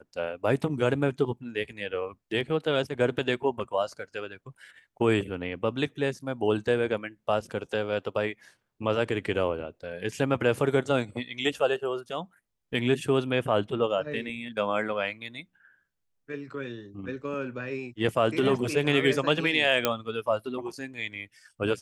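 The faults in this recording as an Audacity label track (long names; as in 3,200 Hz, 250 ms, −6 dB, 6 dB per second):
19.850000	19.850000	click −6 dBFS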